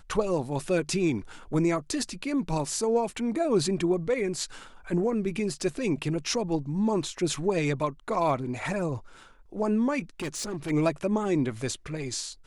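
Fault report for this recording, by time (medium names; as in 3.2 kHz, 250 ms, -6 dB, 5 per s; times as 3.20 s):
10.20–10.71 s: clipped -29 dBFS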